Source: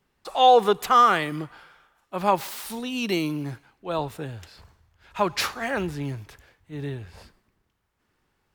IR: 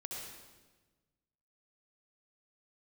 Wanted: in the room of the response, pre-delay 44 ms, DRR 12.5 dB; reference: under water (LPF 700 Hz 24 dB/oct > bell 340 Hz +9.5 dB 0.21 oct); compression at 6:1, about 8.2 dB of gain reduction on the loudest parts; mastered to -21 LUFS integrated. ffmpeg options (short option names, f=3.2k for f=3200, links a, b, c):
-filter_complex "[0:a]acompressor=threshold=-20dB:ratio=6,asplit=2[a][b];[1:a]atrim=start_sample=2205,adelay=44[c];[b][c]afir=irnorm=-1:irlink=0,volume=-11.5dB[d];[a][d]amix=inputs=2:normalize=0,lowpass=f=700:w=0.5412,lowpass=f=700:w=1.3066,equalizer=f=340:t=o:w=0.21:g=9.5,volume=9dB"